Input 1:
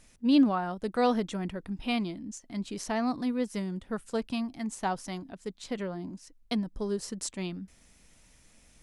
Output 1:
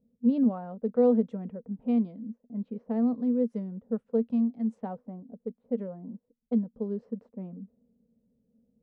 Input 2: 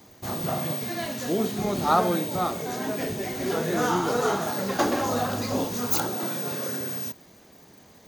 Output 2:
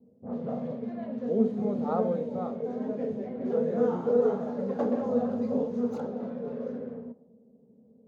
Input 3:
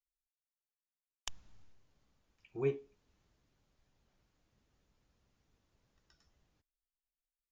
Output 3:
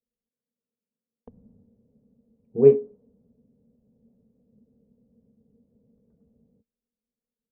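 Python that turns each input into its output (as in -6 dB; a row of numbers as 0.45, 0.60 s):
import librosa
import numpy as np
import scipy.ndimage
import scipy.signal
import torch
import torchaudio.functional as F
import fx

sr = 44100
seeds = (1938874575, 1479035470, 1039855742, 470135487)

y = fx.double_bandpass(x, sr, hz=330.0, octaves=1.0)
y = fx.env_lowpass(y, sr, base_hz=310.0, full_db=-33.0)
y = y * 10.0 ** (-30 / 20.0) / np.sqrt(np.mean(np.square(y)))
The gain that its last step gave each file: +7.0, +6.0, +28.0 dB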